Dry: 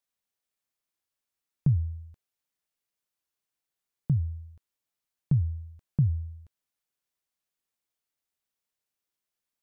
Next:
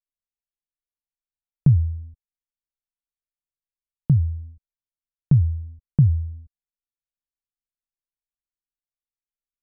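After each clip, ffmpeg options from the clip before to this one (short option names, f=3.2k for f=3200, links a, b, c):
-af "anlmdn=0.158,volume=8dB"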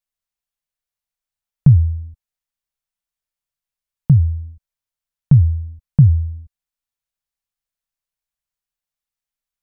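-af "equalizer=f=330:w=2.7:g=-14.5,volume=6.5dB"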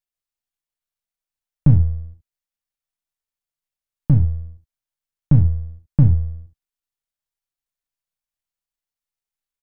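-af "aeval=exprs='if(lt(val(0),0),0.447*val(0),val(0))':c=same,aecho=1:1:35|69:0.266|0.211,volume=-1dB"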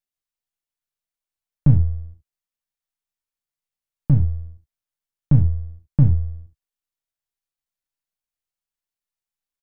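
-filter_complex "[0:a]asplit=2[a][b];[b]adelay=15,volume=-14dB[c];[a][c]amix=inputs=2:normalize=0,volume=-2dB"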